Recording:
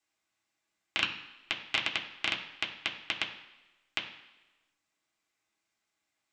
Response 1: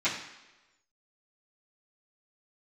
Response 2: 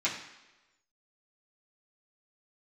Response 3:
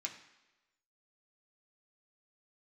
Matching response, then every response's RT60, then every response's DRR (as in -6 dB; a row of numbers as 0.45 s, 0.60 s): 3; 1.1 s, 1.1 s, 1.1 s; -14.5 dB, -9.5 dB, -0.5 dB